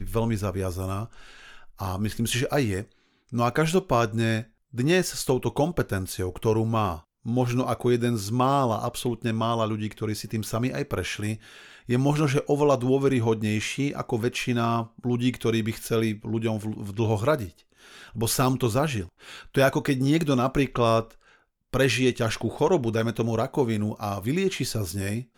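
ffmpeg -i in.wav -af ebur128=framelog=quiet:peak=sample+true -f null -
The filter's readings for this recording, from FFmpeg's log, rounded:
Integrated loudness:
  I:         -25.7 LUFS
  Threshold: -36.1 LUFS
Loudness range:
  LRA:         3.1 LU
  Threshold: -45.9 LUFS
  LRA low:   -27.6 LUFS
  LRA high:  -24.4 LUFS
Sample peak:
  Peak:       -8.3 dBFS
True peak:
  Peak:       -8.3 dBFS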